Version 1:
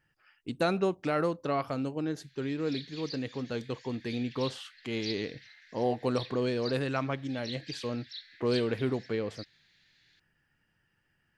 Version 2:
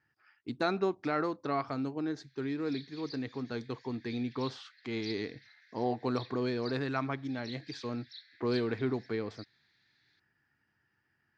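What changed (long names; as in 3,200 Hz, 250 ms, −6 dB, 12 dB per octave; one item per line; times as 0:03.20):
background −4.0 dB
master: add loudspeaker in its box 100–5,600 Hz, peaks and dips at 170 Hz −9 dB, 540 Hz −9 dB, 2,900 Hz −10 dB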